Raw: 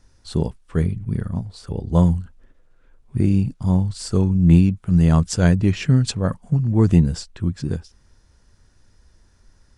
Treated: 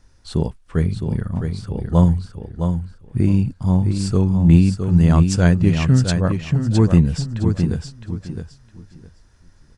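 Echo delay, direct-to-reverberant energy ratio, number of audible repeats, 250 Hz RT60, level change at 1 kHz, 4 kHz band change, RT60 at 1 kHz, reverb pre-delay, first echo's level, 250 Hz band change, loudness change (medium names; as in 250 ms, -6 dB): 662 ms, no reverb, 3, no reverb, +2.5 dB, +1.5 dB, no reverb, no reverb, -6.5 dB, +1.5 dB, +1.5 dB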